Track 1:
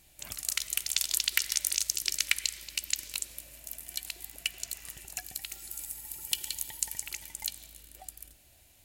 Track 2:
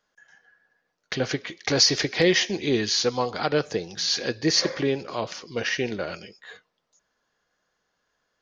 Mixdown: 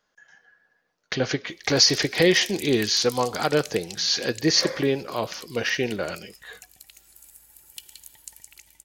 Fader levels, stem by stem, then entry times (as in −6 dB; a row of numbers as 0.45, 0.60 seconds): −10.0, +1.5 decibels; 1.45, 0.00 seconds